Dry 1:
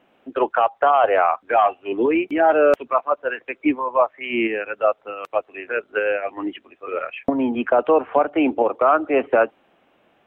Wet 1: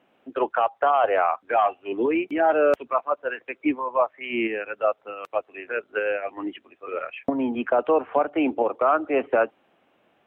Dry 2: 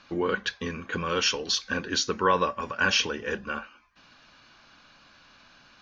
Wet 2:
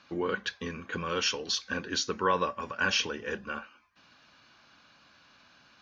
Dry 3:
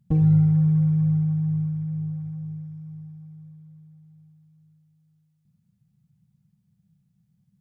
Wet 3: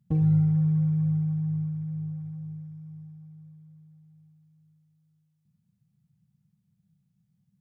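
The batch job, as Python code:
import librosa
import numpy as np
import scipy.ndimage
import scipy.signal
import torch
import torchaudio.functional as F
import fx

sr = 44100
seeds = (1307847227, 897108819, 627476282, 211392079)

y = scipy.signal.sosfilt(scipy.signal.butter(2, 61.0, 'highpass', fs=sr, output='sos'), x)
y = y * librosa.db_to_amplitude(-4.0)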